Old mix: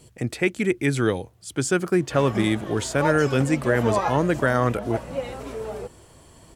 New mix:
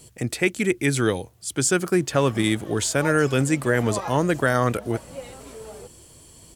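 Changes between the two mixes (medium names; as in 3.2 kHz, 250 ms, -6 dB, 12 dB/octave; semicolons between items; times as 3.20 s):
background -8.0 dB; master: add treble shelf 4.2 kHz +9 dB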